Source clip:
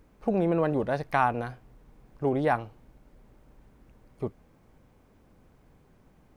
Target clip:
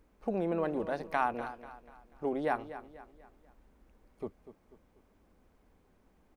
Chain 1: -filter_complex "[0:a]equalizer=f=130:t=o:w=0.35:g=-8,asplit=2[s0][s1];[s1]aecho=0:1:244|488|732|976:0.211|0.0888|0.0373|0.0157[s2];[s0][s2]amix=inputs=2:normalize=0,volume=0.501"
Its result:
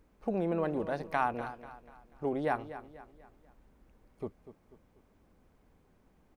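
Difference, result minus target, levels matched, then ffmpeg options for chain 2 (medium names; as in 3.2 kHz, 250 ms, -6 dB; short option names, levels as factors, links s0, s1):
125 Hz band +3.5 dB
-filter_complex "[0:a]equalizer=f=130:t=o:w=0.35:g=-18.5,asplit=2[s0][s1];[s1]aecho=0:1:244|488|732|976:0.211|0.0888|0.0373|0.0157[s2];[s0][s2]amix=inputs=2:normalize=0,volume=0.501"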